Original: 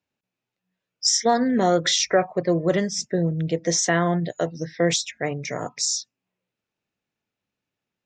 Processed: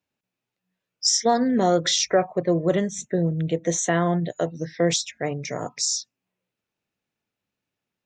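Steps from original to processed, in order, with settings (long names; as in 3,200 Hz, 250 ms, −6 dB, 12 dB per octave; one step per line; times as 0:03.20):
0:02.08–0:04.64: Butterworth band-reject 5,000 Hz, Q 2.5
dynamic equaliser 1,900 Hz, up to −4 dB, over −39 dBFS, Q 1.2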